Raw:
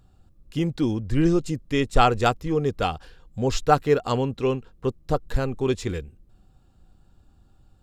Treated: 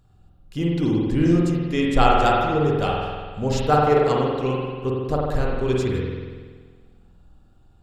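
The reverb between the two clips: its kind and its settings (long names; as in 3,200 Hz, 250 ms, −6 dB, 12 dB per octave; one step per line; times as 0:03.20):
spring reverb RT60 1.6 s, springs 47 ms, chirp 40 ms, DRR −3 dB
level −2 dB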